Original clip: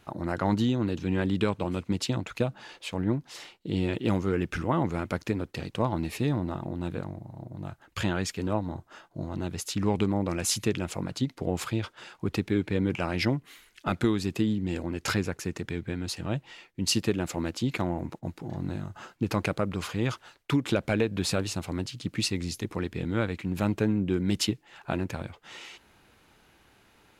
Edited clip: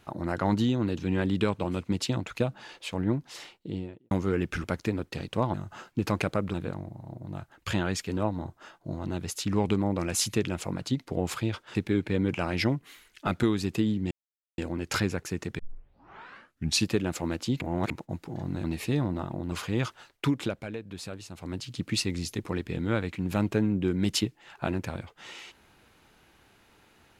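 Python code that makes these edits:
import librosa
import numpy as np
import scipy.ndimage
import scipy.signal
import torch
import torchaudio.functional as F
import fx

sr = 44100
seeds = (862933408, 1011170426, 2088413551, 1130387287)

y = fx.studio_fade_out(x, sr, start_s=3.43, length_s=0.68)
y = fx.edit(y, sr, fx.cut(start_s=4.64, length_s=0.42),
    fx.swap(start_s=5.96, length_s=0.88, other_s=18.78, other_length_s=1.0),
    fx.cut(start_s=12.05, length_s=0.31),
    fx.insert_silence(at_s=14.72, length_s=0.47),
    fx.tape_start(start_s=15.73, length_s=1.29),
    fx.reverse_span(start_s=17.75, length_s=0.29),
    fx.fade_down_up(start_s=20.51, length_s=1.46, db=-11.5, fade_s=0.4), tone=tone)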